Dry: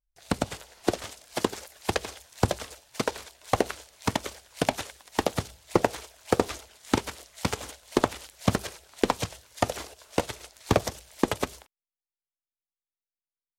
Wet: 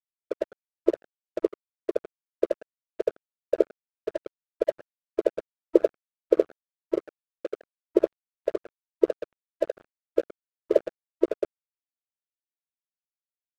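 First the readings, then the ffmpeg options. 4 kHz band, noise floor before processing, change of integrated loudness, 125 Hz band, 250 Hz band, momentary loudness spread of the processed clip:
under -15 dB, under -85 dBFS, +1.0 dB, under -25 dB, -1.5 dB, 14 LU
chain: -af "adynamicsmooth=sensitivity=1.5:basefreq=520,afftfilt=real='re*between(b*sr/4096,320,660)':imag='im*between(b*sr/4096,320,660)':win_size=4096:overlap=0.75,aeval=exprs='sgn(val(0))*max(abs(val(0))-0.00841,0)':c=same,volume=6dB"

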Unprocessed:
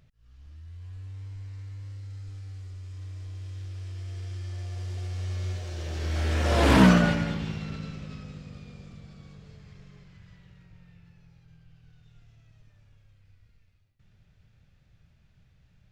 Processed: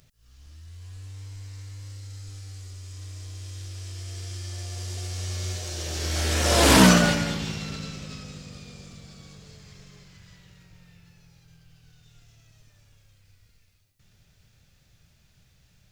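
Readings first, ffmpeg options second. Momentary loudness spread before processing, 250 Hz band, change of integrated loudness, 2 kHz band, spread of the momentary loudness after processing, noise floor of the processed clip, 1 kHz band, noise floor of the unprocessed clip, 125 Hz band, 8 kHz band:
23 LU, +1.0 dB, +4.5 dB, +4.5 dB, 25 LU, -62 dBFS, +3.5 dB, -62 dBFS, 0.0 dB, +16.0 dB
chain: -af "bass=f=250:g=-4,treble=f=4k:g=14,volume=3.5dB"

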